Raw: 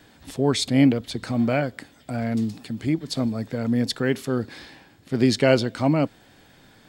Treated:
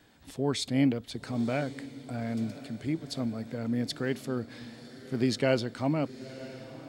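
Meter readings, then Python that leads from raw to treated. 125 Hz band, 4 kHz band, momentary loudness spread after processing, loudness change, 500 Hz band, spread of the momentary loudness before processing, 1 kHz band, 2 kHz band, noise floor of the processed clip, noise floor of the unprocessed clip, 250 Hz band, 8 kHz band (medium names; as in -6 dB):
-8.0 dB, -8.0 dB, 16 LU, -8.0 dB, -8.0 dB, 12 LU, -8.0 dB, -8.0 dB, -52 dBFS, -54 dBFS, -8.0 dB, -8.0 dB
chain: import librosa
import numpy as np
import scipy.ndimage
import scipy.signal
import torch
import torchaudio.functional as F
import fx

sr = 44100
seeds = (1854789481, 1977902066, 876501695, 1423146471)

y = fx.echo_diffused(x, sr, ms=994, feedback_pct=53, wet_db=-15.5)
y = F.gain(torch.from_numpy(y), -8.0).numpy()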